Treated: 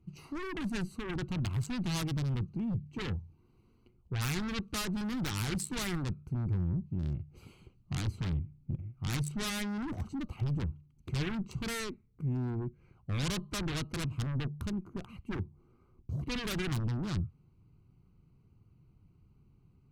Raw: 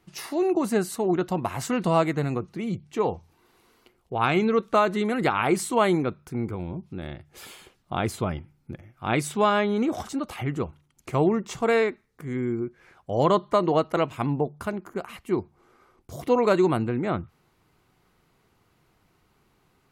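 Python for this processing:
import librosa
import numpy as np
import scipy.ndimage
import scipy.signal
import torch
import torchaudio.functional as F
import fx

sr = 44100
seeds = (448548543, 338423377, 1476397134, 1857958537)

p1 = fx.wiener(x, sr, points=25)
p2 = fx.peak_eq(p1, sr, hz=120.0, db=5.0, octaves=1.5)
p3 = fx.fold_sine(p2, sr, drive_db=18, ceiling_db=-8.5)
p4 = p2 + (p3 * 10.0 ** (-11.0 / 20.0))
p5 = fx.tone_stack(p4, sr, knobs='6-0-2')
y = p5 * 10.0 ** (4.0 / 20.0)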